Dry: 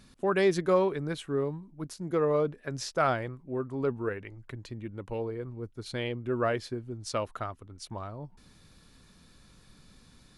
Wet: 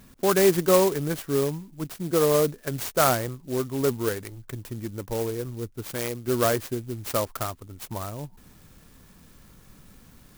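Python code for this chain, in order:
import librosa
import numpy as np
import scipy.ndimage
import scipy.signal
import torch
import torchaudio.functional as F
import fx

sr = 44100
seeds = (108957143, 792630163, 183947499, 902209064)

y = fx.low_shelf(x, sr, hz=410.0, db=-6.0, at=(5.86, 6.28))
y = fx.clock_jitter(y, sr, seeds[0], jitter_ms=0.083)
y = y * librosa.db_to_amplitude(5.5)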